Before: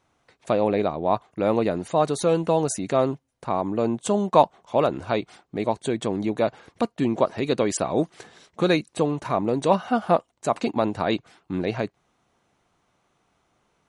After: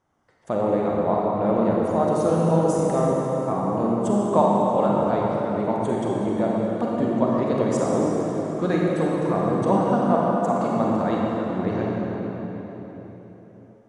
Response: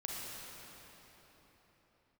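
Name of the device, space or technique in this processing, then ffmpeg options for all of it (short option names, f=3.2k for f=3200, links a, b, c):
swimming-pool hall: -filter_complex "[0:a]equalizer=f=200:t=o:w=0.33:g=4,equalizer=f=2.5k:t=o:w=0.33:g=-11,equalizer=f=4k:t=o:w=0.33:g=-10[a];[1:a]atrim=start_sample=2205[b];[a][b]afir=irnorm=-1:irlink=0,highshelf=f=5.3k:g=-7"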